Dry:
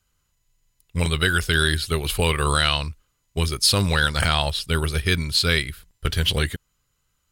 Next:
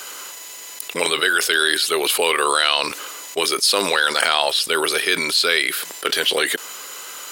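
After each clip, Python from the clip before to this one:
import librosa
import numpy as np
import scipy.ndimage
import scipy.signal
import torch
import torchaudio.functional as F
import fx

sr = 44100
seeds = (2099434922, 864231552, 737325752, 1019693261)

y = scipy.signal.sosfilt(scipy.signal.butter(4, 360.0, 'highpass', fs=sr, output='sos'), x)
y = fx.env_flatten(y, sr, amount_pct=70)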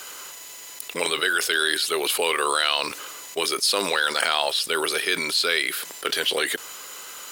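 y = fx.quant_dither(x, sr, seeds[0], bits=8, dither='triangular')
y = F.gain(torch.from_numpy(y), -4.5).numpy()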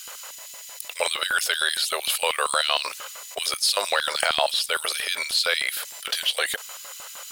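y = fx.low_shelf_res(x, sr, hz=450.0, db=-8.0, q=3.0)
y = fx.filter_lfo_highpass(y, sr, shape='square', hz=6.5, low_hz=380.0, high_hz=3000.0, q=0.76)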